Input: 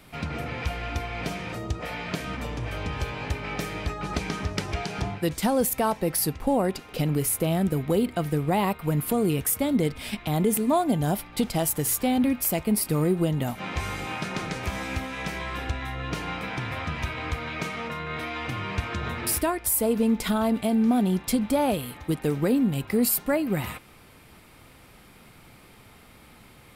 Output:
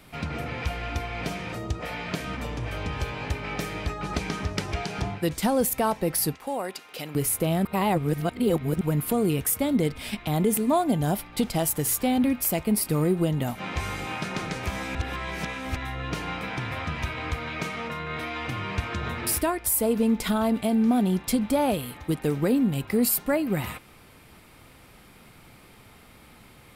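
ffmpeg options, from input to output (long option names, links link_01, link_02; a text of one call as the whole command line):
ffmpeg -i in.wav -filter_complex "[0:a]asettb=1/sr,asplit=3[link_01][link_02][link_03];[link_01]atrim=end=6.354[link_04];[link_02]atrim=start=6.35:end=7.15,asetpts=PTS-STARTPTS,afade=type=in:duration=0.004:curve=qsin,afade=type=out:start_time=0.796:duration=0.004:curve=qsin,highpass=frequency=1000:poles=1[link_05];[link_03]atrim=start=7.146[link_06];[link_04][link_05]acrossfade=duration=0.004:curve1=hsin:curve2=qsin[link_07];[link_07][link_06]acrossfade=duration=0.004:curve1=qsin:curve2=hsin,asplit=5[link_08][link_09][link_10][link_11][link_12];[link_08]atrim=end=7.652[link_13];[link_09]atrim=start=7.648:end=8.812,asetpts=PTS-STARTPTS,areverse[link_14];[link_10]atrim=start=8.808:end=14.952[link_15];[link_11]atrim=start=14.948:end=15.762,asetpts=PTS-STARTPTS,areverse[link_16];[link_12]atrim=start=15.758[link_17];[link_13][link_14]acrossfade=duration=0.004:curve1=hsin:curve2=hsin[link_18];[link_18][link_15]acrossfade=duration=0.004:curve1=hsin:curve2=hsin[link_19];[link_19][link_16]acrossfade=duration=0.004:curve1=hsin:curve2=hsin[link_20];[link_20][link_17]acrossfade=duration=0.004:curve1=hsin:curve2=hsin" out.wav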